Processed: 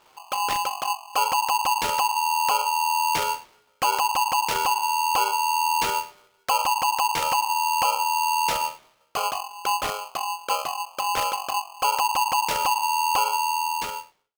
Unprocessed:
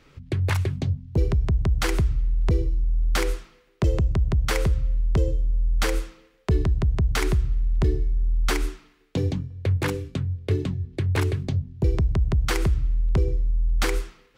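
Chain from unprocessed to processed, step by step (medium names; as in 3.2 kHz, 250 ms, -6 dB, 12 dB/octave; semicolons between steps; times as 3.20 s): fade out at the end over 1.02 s; polarity switched at an audio rate 920 Hz; trim -2.5 dB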